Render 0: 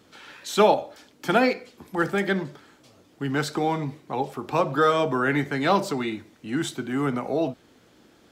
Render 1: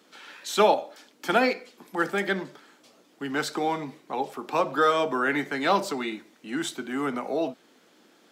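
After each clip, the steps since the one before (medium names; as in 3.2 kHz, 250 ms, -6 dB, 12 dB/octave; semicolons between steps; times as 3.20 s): high-pass 180 Hz 24 dB/octave; bass shelf 450 Hz -5 dB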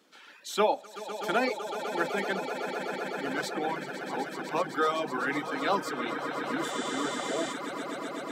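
echo with a slow build-up 126 ms, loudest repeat 8, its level -11 dB; reverb removal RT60 0.99 s; spectral replace 6.68–7.51 s, 1.7–9.5 kHz before; trim -5 dB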